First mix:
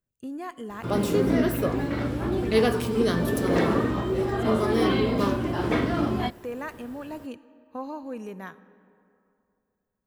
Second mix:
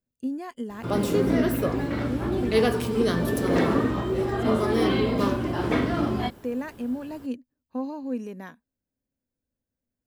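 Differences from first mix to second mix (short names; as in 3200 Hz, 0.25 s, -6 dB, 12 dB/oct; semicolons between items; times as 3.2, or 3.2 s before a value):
speech: add thirty-one-band EQ 250 Hz +12 dB, 500 Hz +4 dB, 1250 Hz -6 dB, 5000 Hz +7 dB; reverb: off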